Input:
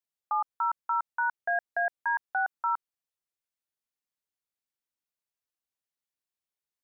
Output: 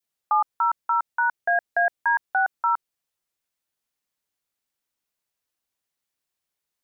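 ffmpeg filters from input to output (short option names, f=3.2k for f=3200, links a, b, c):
-af "adynamicequalizer=threshold=0.00891:dfrequency=1100:dqfactor=0.96:tfrequency=1100:tqfactor=0.96:attack=5:release=100:ratio=0.375:range=2:mode=cutabove:tftype=bell,volume=8dB"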